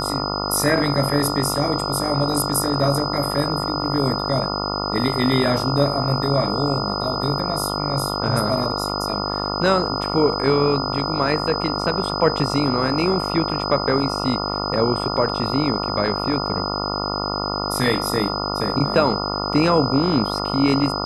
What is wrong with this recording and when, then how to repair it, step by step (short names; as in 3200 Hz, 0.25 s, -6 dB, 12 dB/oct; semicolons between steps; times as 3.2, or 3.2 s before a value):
buzz 50 Hz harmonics 28 -26 dBFS
tone 5000 Hz -27 dBFS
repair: notch 5000 Hz, Q 30; de-hum 50 Hz, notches 28